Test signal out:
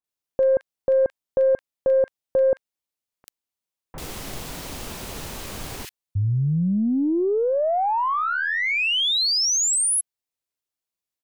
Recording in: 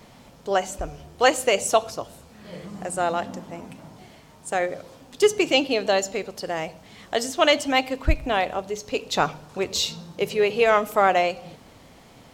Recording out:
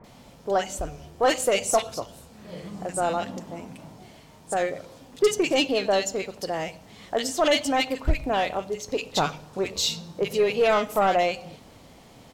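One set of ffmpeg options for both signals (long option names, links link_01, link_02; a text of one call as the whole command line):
ffmpeg -i in.wav -filter_complex "[0:a]aeval=exprs='0.596*(cos(1*acos(clip(val(0)/0.596,-1,1)))-cos(1*PI/2))+0.0841*(cos(5*acos(clip(val(0)/0.596,-1,1)))-cos(5*PI/2))+0.0075*(cos(6*acos(clip(val(0)/0.596,-1,1)))-cos(6*PI/2))+0.0119*(cos(7*acos(clip(val(0)/0.596,-1,1)))-cos(7*PI/2))':channel_layout=same,acrossover=split=1600[link_01][link_02];[link_02]adelay=40[link_03];[link_01][link_03]amix=inputs=2:normalize=0,volume=-4dB" out.wav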